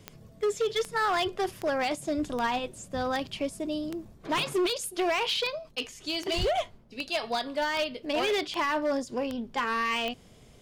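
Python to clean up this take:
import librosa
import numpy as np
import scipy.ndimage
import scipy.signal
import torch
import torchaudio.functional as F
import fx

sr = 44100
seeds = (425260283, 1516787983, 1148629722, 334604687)

y = fx.fix_declip(x, sr, threshold_db=-22.5)
y = fx.fix_declick_ar(y, sr, threshold=10.0)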